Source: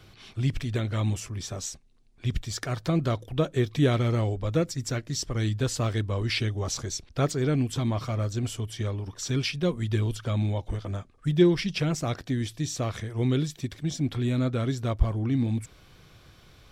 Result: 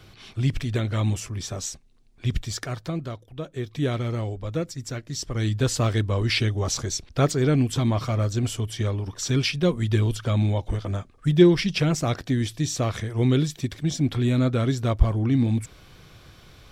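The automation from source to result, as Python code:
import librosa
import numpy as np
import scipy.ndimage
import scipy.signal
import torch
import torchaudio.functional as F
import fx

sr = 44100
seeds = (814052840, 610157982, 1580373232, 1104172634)

y = fx.gain(x, sr, db=fx.line((2.49, 3.0), (3.28, -10.0), (3.87, -2.5), (5.0, -2.5), (5.66, 4.5)))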